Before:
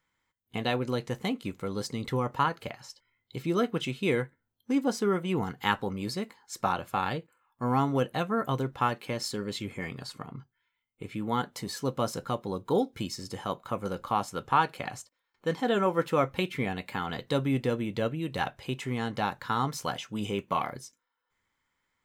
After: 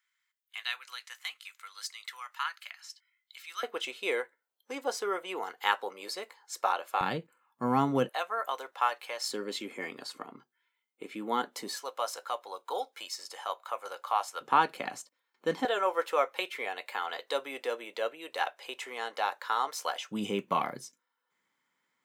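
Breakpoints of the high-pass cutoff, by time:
high-pass 24 dB/octave
1.4 kHz
from 3.63 s 460 Hz
from 7.01 s 150 Hz
from 8.09 s 600 Hz
from 9.30 s 270 Hz
from 11.76 s 620 Hz
from 14.41 s 210 Hz
from 15.65 s 490 Hz
from 20.11 s 160 Hz

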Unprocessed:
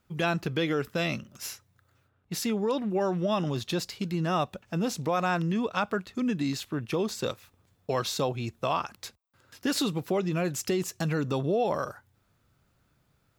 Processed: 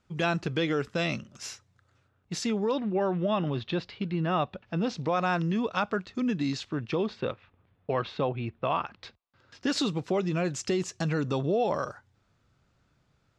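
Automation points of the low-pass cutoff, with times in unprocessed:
low-pass 24 dB/octave
2.35 s 8 kHz
3.11 s 3.6 kHz
4.32 s 3.6 kHz
5.41 s 6.3 kHz
6.79 s 6.3 kHz
7.23 s 3 kHz
8.62 s 3 kHz
9.83 s 7.3 kHz

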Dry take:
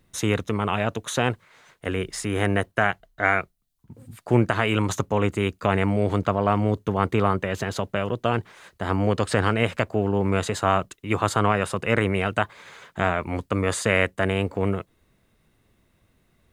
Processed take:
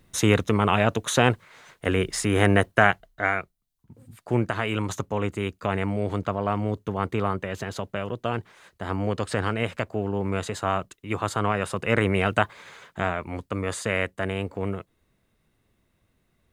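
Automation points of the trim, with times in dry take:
2.90 s +3.5 dB
3.35 s -4.5 dB
11.36 s -4.5 dB
12.33 s +2 dB
13.27 s -5 dB

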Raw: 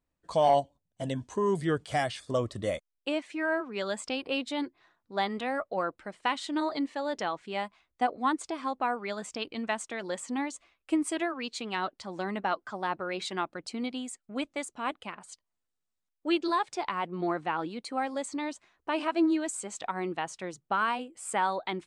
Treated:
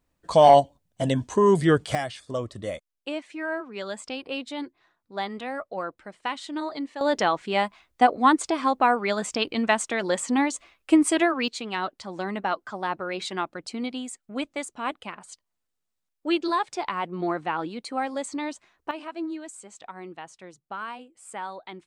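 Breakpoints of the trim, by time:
+9 dB
from 1.95 s -1 dB
from 7.01 s +9.5 dB
from 11.48 s +3 dB
from 18.91 s -7 dB

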